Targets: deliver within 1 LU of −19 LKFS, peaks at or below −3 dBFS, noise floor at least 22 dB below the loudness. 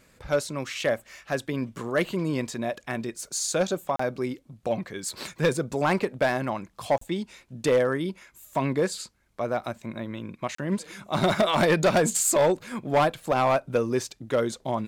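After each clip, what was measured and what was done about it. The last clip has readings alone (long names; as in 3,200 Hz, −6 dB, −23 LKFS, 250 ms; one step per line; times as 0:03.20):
share of clipped samples 0.9%; peaks flattened at −15.5 dBFS; number of dropouts 3; longest dropout 34 ms; integrated loudness −27.0 LKFS; sample peak −15.5 dBFS; target loudness −19.0 LKFS
→ clipped peaks rebuilt −15.5 dBFS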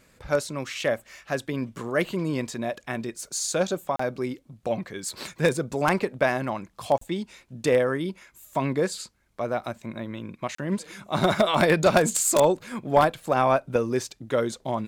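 share of clipped samples 0.0%; number of dropouts 3; longest dropout 34 ms
→ repair the gap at 0:03.96/0:06.98/0:10.55, 34 ms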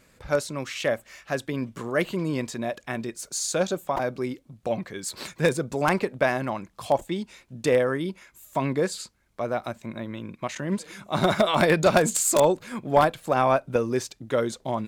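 number of dropouts 0; integrated loudness −26.0 LKFS; sample peak −6.5 dBFS; target loudness −19.0 LKFS
→ level +7 dB
brickwall limiter −3 dBFS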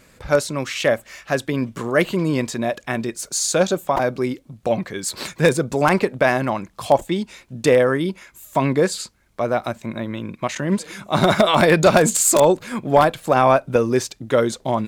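integrated loudness −19.5 LKFS; sample peak −3.0 dBFS; background noise floor −55 dBFS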